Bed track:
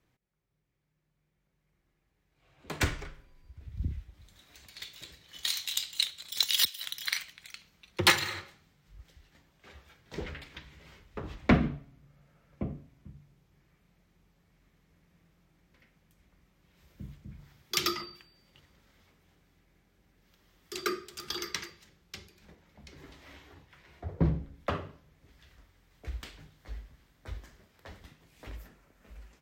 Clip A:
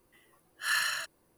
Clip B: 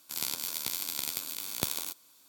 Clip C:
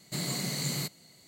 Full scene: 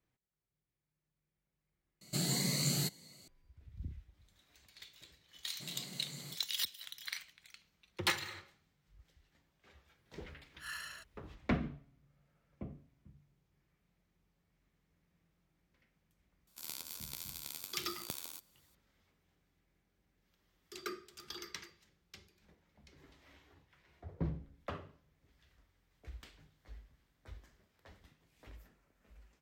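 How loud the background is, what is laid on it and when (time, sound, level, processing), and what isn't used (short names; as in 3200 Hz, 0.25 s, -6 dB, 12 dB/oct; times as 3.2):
bed track -10.5 dB
2.01 replace with C -0.5 dB + cascading phaser rising 1.8 Hz
5.48 add C -16 dB
9.98 add A -15.5 dB
16.47 add B -11.5 dB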